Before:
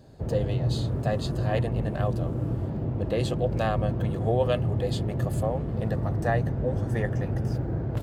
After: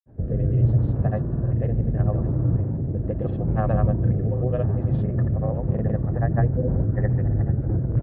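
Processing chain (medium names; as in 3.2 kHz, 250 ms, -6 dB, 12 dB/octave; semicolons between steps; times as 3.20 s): low-pass 1.9 kHz 24 dB/octave; bass shelf 310 Hz +9.5 dB; on a send: delay 1069 ms -18.5 dB; on the sum: rotary cabinet horn 0.75 Hz, later 6.3 Hz, at 4.69 s; granulator 100 ms, pitch spread up and down by 0 st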